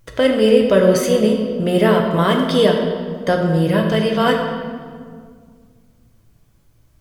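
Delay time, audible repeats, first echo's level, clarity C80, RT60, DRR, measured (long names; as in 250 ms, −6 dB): no echo audible, no echo audible, no echo audible, 5.5 dB, 2.0 s, 1.0 dB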